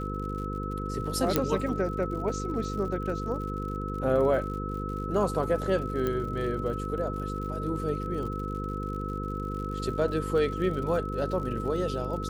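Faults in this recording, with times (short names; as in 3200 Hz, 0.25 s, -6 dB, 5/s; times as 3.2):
buzz 50 Hz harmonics 10 -34 dBFS
crackle 86/s -38 dBFS
tone 1300 Hz -36 dBFS
1.36 pop -8 dBFS
6.07 pop -17 dBFS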